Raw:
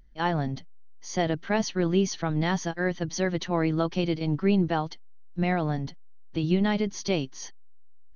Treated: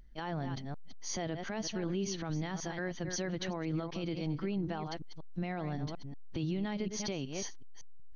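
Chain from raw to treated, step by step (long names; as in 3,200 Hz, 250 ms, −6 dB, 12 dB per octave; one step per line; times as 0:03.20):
delay that plays each chunk backwards 186 ms, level −12.5 dB
downward compressor 2 to 1, threshold −32 dBFS, peak gain reduction 8 dB
brickwall limiter −27 dBFS, peak gain reduction 9.5 dB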